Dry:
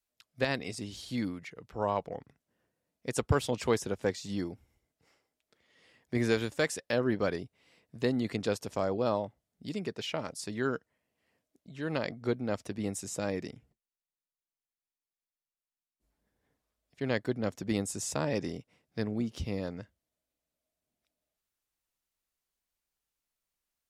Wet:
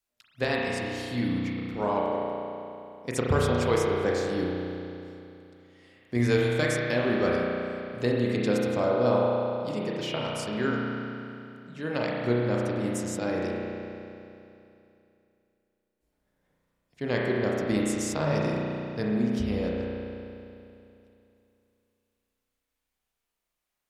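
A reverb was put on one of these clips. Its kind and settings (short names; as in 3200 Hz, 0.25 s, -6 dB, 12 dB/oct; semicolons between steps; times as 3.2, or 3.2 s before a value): spring tank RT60 2.8 s, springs 33 ms, chirp 35 ms, DRR -3.5 dB; gain +1 dB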